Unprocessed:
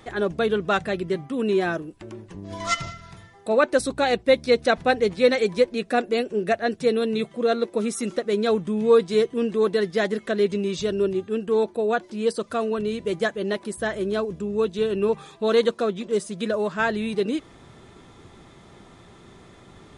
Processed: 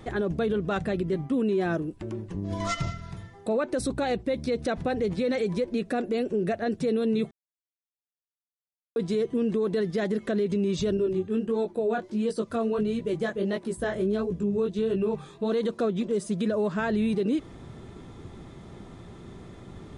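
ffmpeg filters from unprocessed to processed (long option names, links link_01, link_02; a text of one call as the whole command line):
ffmpeg -i in.wav -filter_complex "[0:a]asettb=1/sr,asplit=3[link_01][link_02][link_03];[link_01]atrim=end=0.524[link_04];[link_02]atrim=start=0.52:end=1.32,asetpts=PTS-STARTPTS,afade=type=in:duration=0.004:curve=qsin,afade=type=out:start_time=0.796:duration=0.004:curve=qsin,tremolo=f=120:d=0.261[link_05];[link_03]atrim=start=1.316[link_06];[link_04][link_05]acrossfade=duration=0.004:curve1=hsin:curve2=qsin[link_07];[link_07][link_06]acrossfade=duration=0.004:curve1=qsin:curve2=hsin,asettb=1/sr,asplit=3[link_08][link_09][link_10];[link_08]atrim=end=10.974[link_11];[link_09]atrim=start=10.97:end=15.52,asetpts=PTS-STARTPTS,afade=type=in:duration=0.004:curve=qsin,afade=type=out:start_time=4.546:duration=0.004:curve=qsin,flanger=delay=16.5:depth=5.7:speed=1.5[link_12];[link_10]atrim=start=15.516[link_13];[link_11][link_12]acrossfade=duration=0.004:curve1=hsin:curve2=qsin[link_14];[link_14][link_13]acrossfade=duration=0.004:curve1=qsin:curve2=hsin,asplit=3[link_15][link_16][link_17];[link_15]atrim=end=7.31,asetpts=PTS-STARTPTS,afade=type=out:start_time=7.306:duration=0.004:curve=hsin[link_18];[link_16]atrim=start=7.31:end=8.96,asetpts=PTS-STARTPTS,volume=0[link_19];[link_17]atrim=start=8.96,asetpts=PTS-STARTPTS,afade=type=in:duration=0.004:curve=hsin[link_20];[link_18][link_19][link_20]concat=n=3:v=0:a=1,lowshelf=frequency=500:gain=10,alimiter=limit=-16dB:level=0:latency=1:release=58,volume=-3dB" out.wav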